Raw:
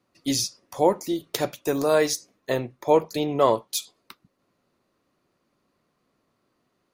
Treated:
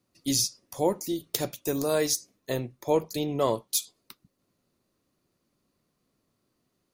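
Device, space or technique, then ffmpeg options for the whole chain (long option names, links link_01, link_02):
smiley-face EQ: -af "lowshelf=frequency=120:gain=4,equalizer=frequency=1200:width_type=o:width=2.9:gain=-6.5,highshelf=frequency=5100:gain=6.5,volume=-2dB"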